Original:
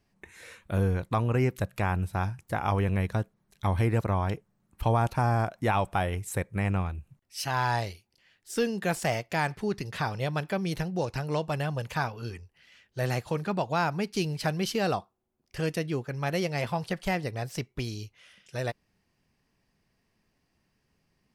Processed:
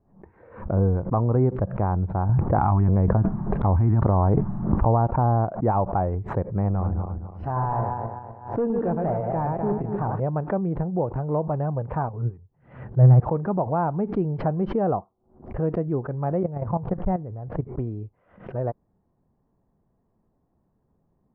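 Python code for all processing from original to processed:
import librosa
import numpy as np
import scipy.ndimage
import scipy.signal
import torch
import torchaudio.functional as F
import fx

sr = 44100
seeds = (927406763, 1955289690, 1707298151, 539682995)

y = fx.chain(x, sr, fx.filter_lfo_notch(shape='square', hz=1.7, low_hz=490.0, high_hz=6200.0, q=0.76),
    fx.env_flatten(amount_pct=100), at=(2.29, 4.85))
y = fx.chain(y, sr, fx.reverse_delay_fb(ms=126, feedback_pct=58, wet_db=-4),
    fx.clip_hard(threshold_db=-24.0), at=(6.68, 10.2))
y = fx.chain(y, sr, fx.peak_eq(hz=130.0, db=14.5, octaves=0.61),
    fx.upward_expand(threshold_db=-38.0, expansion=1.5), at=(12.09, 13.2))
y = fx.chain(y, sr, fx.lowpass(hz=3100.0, slope=12),
    fx.low_shelf(hz=130.0, db=11.0),
    fx.level_steps(step_db=13), at=(16.43, 17.68))
y = scipy.signal.sosfilt(scipy.signal.butter(4, 1000.0, 'lowpass', fs=sr, output='sos'), y)
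y = fx.pre_swell(y, sr, db_per_s=120.0)
y = F.gain(torch.from_numpy(y), 5.0).numpy()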